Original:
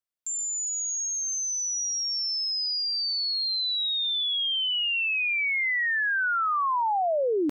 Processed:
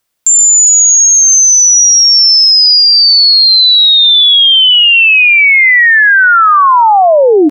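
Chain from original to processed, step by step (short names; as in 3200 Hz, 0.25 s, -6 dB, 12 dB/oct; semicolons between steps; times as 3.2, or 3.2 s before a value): echo 0.398 s -22 dB; maximiser +25.5 dB; gain -1 dB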